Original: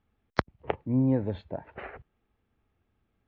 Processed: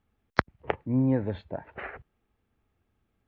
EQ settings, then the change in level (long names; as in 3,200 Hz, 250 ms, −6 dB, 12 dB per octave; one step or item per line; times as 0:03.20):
dynamic equaliser 1,700 Hz, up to +6 dB, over −49 dBFS, Q 1.2
0.0 dB